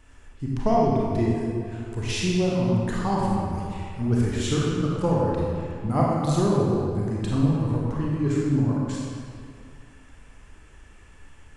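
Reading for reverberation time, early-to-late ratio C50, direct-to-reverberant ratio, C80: 2.3 s, −2.5 dB, −5.0 dB, −0.5 dB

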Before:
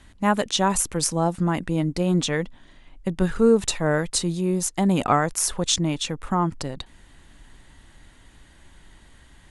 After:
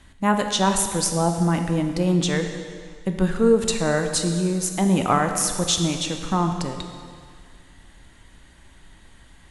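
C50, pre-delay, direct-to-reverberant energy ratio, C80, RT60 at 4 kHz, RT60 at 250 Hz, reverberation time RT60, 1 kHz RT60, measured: 6.5 dB, 5 ms, 5.0 dB, 7.5 dB, 1.9 s, 1.9 s, 2.0 s, 2.0 s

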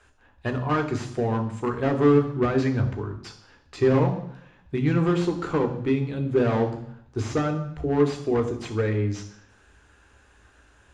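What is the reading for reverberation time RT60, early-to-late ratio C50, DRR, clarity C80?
0.75 s, 10.5 dB, 5.0 dB, 13.5 dB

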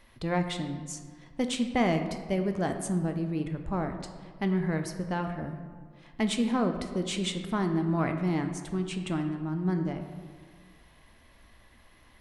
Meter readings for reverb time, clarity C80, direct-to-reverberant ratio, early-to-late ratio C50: 1.7 s, 9.0 dB, 5.5 dB, 7.5 dB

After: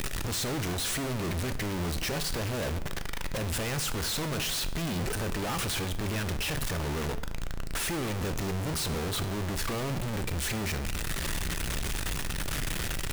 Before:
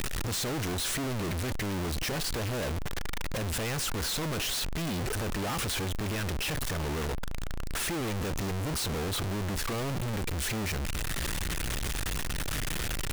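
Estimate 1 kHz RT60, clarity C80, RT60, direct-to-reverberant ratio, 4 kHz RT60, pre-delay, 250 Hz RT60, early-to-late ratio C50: 0.80 s, 16.5 dB, 0.90 s, 10.0 dB, 0.70 s, 3 ms, 0.95 s, 14.0 dB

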